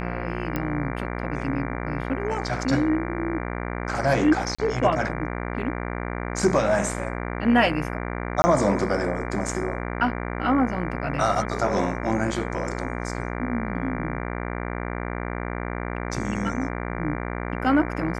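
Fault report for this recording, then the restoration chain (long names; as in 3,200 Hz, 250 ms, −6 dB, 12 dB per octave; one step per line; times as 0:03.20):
mains buzz 60 Hz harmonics 39 −30 dBFS
0:00.56: click −13 dBFS
0:04.55–0:04.58: drop-out 35 ms
0:08.42–0:08.44: drop-out 20 ms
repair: click removal
hum removal 60 Hz, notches 39
repair the gap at 0:04.55, 35 ms
repair the gap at 0:08.42, 20 ms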